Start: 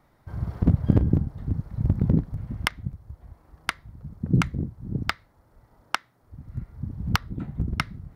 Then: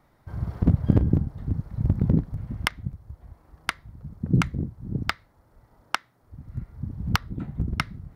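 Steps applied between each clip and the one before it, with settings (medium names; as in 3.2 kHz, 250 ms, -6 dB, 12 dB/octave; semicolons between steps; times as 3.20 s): no audible change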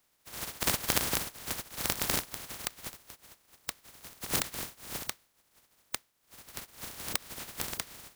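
spectral contrast reduction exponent 0.13; trim -10 dB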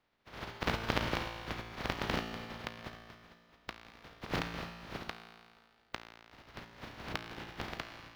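distance through air 290 m; feedback comb 57 Hz, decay 1.9 s, harmonics all, mix 80%; trim +13 dB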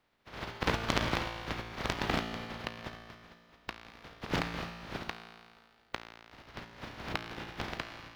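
loudspeaker Doppler distortion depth 0.71 ms; trim +3 dB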